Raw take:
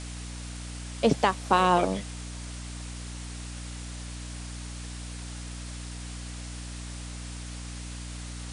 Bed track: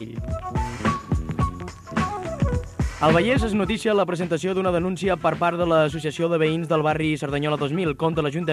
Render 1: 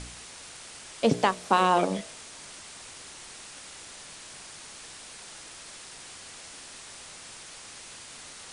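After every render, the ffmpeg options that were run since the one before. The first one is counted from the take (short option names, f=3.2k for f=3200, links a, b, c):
-af "bandreject=f=60:t=h:w=4,bandreject=f=120:t=h:w=4,bandreject=f=180:t=h:w=4,bandreject=f=240:t=h:w=4,bandreject=f=300:t=h:w=4,bandreject=f=360:t=h:w=4,bandreject=f=420:t=h:w=4,bandreject=f=480:t=h:w=4,bandreject=f=540:t=h:w=4,bandreject=f=600:t=h:w=4,bandreject=f=660:t=h:w=4"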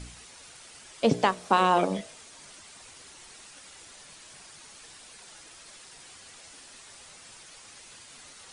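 -af "afftdn=nr=7:nf=-46"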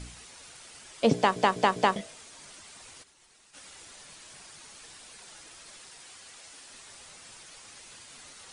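-filter_complex "[0:a]asplit=3[a][b][c];[a]afade=t=out:st=3.02:d=0.02[d];[b]agate=range=-33dB:threshold=-42dB:ratio=3:release=100:detection=peak,afade=t=in:st=3.02:d=0.02,afade=t=out:st=3.53:d=0.02[e];[c]afade=t=in:st=3.53:d=0.02[f];[d][e][f]amix=inputs=3:normalize=0,asettb=1/sr,asplit=3[g][h][i];[g]atrim=end=5.904[j];[h]atrim=start=5.9:end=6.7,asetpts=PTS-STARTPTS,afade=t=in:d=0.004:c=qsin,afade=t=out:st=0.796:d=0.004:c=qsin,lowshelf=f=320:g=-6[k];[i]atrim=start=6.696[l];[j][k]acrossfade=d=0.004:c1=hsin:c2=qsin[m];[m][l]acrossfade=d=0.004:c1=qsin:c2=hsin,asplit=5[n][o][p][q][r];[n]atrim=end=1.362[s];[o]atrim=start=1.158:end=1.362[t];[p]atrim=start=1.158:end=1.362[u];[q]atrim=start=1.158:end=1.362[v];[r]atrim=start=1.958[w];[s][t]acrossfade=d=0.004:c1=hsin:c2=hsin[x];[x][u]acrossfade=d=0.004:c1=hsin:c2=hsin[y];[y][v]acrossfade=d=0.004:c1=hsin:c2=hsin[z];[z][w]acrossfade=d=0.004:c1=hsin:c2=hsin"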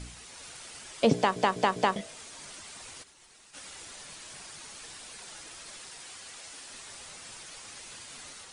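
-af "dynaudnorm=f=220:g=3:m=3.5dB,alimiter=limit=-10.5dB:level=0:latency=1:release=351"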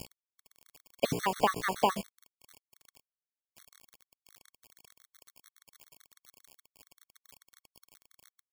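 -af "acrusher=bits=5:mix=0:aa=0.000001,afftfilt=real='re*gt(sin(2*PI*7.1*pts/sr)*(1-2*mod(floor(b*sr/1024/1100),2)),0)':imag='im*gt(sin(2*PI*7.1*pts/sr)*(1-2*mod(floor(b*sr/1024/1100),2)),0)':win_size=1024:overlap=0.75"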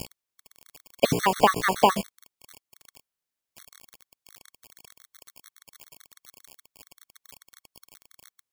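-af "volume=8dB"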